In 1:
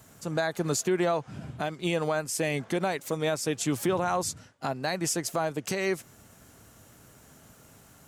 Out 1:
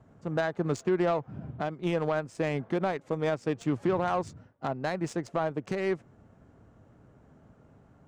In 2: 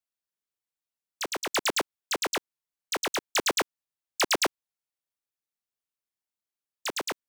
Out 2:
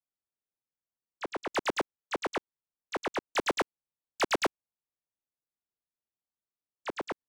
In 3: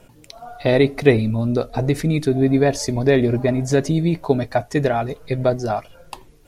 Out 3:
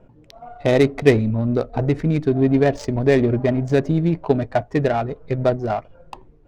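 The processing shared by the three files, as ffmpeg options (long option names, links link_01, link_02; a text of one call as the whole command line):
ffmpeg -i in.wav -af "equalizer=frequency=7900:width_type=o:width=1.2:gain=7.5,adynamicsmooth=sensitivity=1:basefreq=1100" out.wav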